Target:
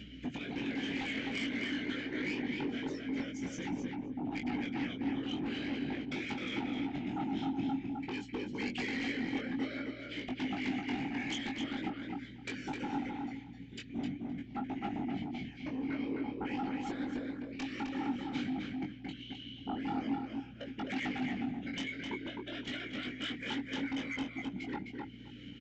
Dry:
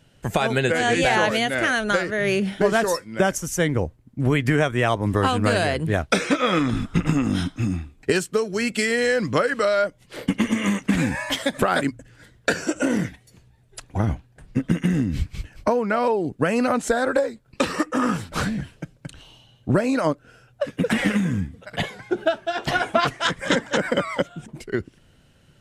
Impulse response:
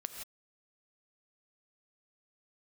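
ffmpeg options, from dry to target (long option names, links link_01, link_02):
-filter_complex "[0:a]aecho=1:1:7.3:0.35,afftfilt=real='hypot(re,im)*cos(2*PI*random(0))':imag='hypot(re,im)*sin(2*PI*random(1))':win_size=512:overlap=0.75,asplit=2[link_01][link_02];[link_02]alimiter=limit=-19.5dB:level=0:latency=1:release=40,volume=1dB[link_03];[link_01][link_03]amix=inputs=2:normalize=0,acompressor=threshold=-28dB:ratio=10,asplit=3[link_04][link_05][link_06];[link_04]bandpass=frequency=270:width_type=q:width=8,volume=0dB[link_07];[link_05]bandpass=frequency=2290:width_type=q:width=8,volume=-6dB[link_08];[link_06]bandpass=frequency=3010:width_type=q:width=8,volume=-9dB[link_09];[link_07][link_08][link_09]amix=inputs=3:normalize=0,acompressor=mode=upward:threshold=-48dB:ratio=2.5,aresample=16000,aeval=exprs='0.0376*sin(PI/2*2.82*val(0)/0.0376)':channel_layout=same,aresample=44100,flanger=delay=19.5:depth=2.9:speed=0.48,aeval=exprs='val(0)+0.00251*(sin(2*PI*60*n/s)+sin(2*PI*2*60*n/s)/2+sin(2*PI*3*60*n/s)/3+sin(2*PI*4*60*n/s)/4+sin(2*PI*5*60*n/s)/5)':channel_layout=same,asplit=2[link_10][link_11];[link_11]adelay=259,lowpass=frequency=3700:poles=1,volume=-3dB,asplit=2[link_12][link_13];[link_13]adelay=259,lowpass=frequency=3700:poles=1,volume=0.16,asplit=2[link_14][link_15];[link_15]adelay=259,lowpass=frequency=3700:poles=1,volume=0.16[link_16];[link_10][link_12][link_14][link_16]amix=inputs=4:normalize=0,volume=-1.5dB"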